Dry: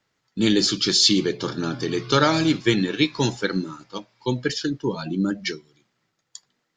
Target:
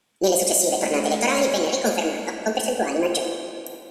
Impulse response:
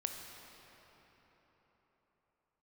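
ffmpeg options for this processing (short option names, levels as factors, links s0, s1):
-filter_complex "[0:a]alimiter=limit=0.237:level=0:latency=1:release=478[s0];[1:a]atrim=start_sample=2205[s1];[s0][s1]afir=irnorm=-1:irlink=0,asetrate=76440,aresample=44100,volume=1.58"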